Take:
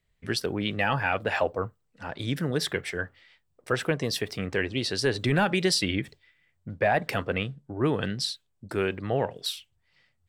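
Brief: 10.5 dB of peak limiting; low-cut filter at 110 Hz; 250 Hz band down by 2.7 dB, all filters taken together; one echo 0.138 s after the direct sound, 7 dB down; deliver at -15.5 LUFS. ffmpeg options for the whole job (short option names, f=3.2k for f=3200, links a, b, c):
-af "highpass=110,equalizer=f=250:t=o:g=-3.5,alimiter=limit=-22dB:level=0:latency=1,aecho=1:1:138:0.447,volume=17.5dB"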